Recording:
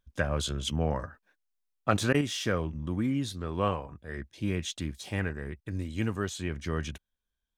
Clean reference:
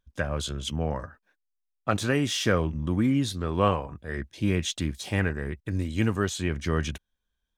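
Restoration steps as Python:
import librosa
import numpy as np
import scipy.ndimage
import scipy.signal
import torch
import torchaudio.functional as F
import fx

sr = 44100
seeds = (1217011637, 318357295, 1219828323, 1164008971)

y = fx.fix_interpolate(x, sr, at_s=(2.13,), length_ms=12.0)
y = fx.gain(y, sr, db=fx.steps((0.0, 0.0), (2.21, 5.5)))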